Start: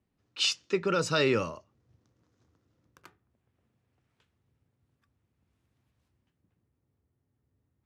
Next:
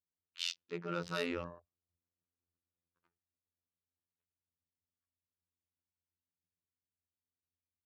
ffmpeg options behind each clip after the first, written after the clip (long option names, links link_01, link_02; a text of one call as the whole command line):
ffmpeg -i in.wav -af "afftfilt=real='hypot(re,im)*cos(PI*b)':imag='0':win_size=2048:overlap=0.75,adynamicsmooth=sensitivity=5.5:basefreq=2900,afwtdn=0.00355,volume=-7dB" out.wav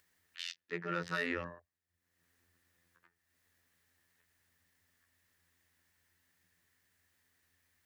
ffmpeg -i in.wav -filter_complex "[0:a]equalizer=frequency=1800:width=3.4:gain=15,acrossover=split=240[link_01][link_02];[link_02]alimiter=limit=-23dB:level=0:latency=1:release=107[link_03];[link_01][link_03]amix=inputs=2:normalize=0,acompressor=mode=upward:threshold=-59dB:ratio=2.5" out.wav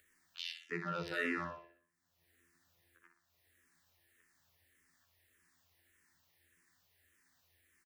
ffmpeg -i in.wav -filter_complex "[0:a]alimiter=level_in=3dB:limit=-24dB:level=0:latency=1:release=26,volume=-3dB,aecho=1:1:61|122|183|244|305|366:0.422|0.207|0.101|0.0496|0.0243|0.0119,asplit=2[link_01][link_02];[link_02]afreqshift=-1.7[link_03];[link_01][link_03]amix=inputs=2:normalize=1,volume=4dB" out.wav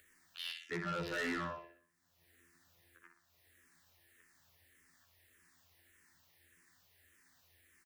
ffmpeg -i in.wav -af "asoftclip=type=tanh:threshold=-38dB,volume=4.5dB" out.wav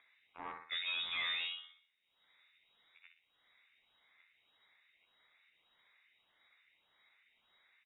ffmpeg -i in.wav -af "lowpass=frequency=3300:width_type=q:width=0.5098,lowpass=frequency=3300:width_type=q:width=0.6013,lowpass=frequency=3300:width_type=q:width=0.9,lowpass=frequency=3300:width_type=q:width=2.563,afreqshift=-3900" out.wav